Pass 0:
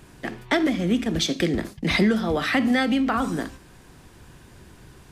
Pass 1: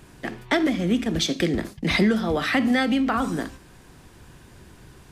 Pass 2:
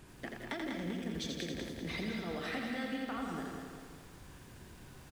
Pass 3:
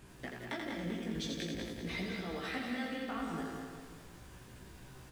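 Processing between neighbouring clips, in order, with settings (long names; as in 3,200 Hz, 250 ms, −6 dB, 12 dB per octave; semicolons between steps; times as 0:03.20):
no processing that can be heard
downward compressor 4 to 1, threshold −33 dBFS, peak gain reduction 15 dB; repeating echo 195 ms, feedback 50%, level −5.5 dB; feedback echo at a low word length 84 ms, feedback 55%, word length 9 bits, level −4 dB; level −7.5 dB
chorus effect 0.42 Hz, delay 15.5 ms, depth 3 ms; level +3 dB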